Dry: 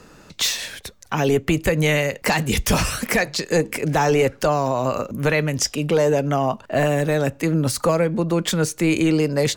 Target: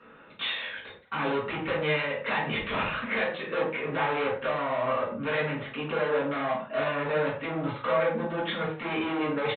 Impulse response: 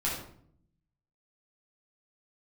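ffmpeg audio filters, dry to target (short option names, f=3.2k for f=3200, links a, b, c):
-filter_complex "[0:a]aresample=8000,asoftclip=type=hard:threshold=-20.5dB,aresample=44100,bandpass=f=1.3k:t=q:w=0.6:csg=0[a];[1:a]atrim=start_sample=2205,afade=t=out:st=0.32:d=0.01,atrim=end_sample=14553,asetrate=70560,aresample=44100[b];[a][b]afir=irnorm=-1:irlink=0,volume=-3.5dB"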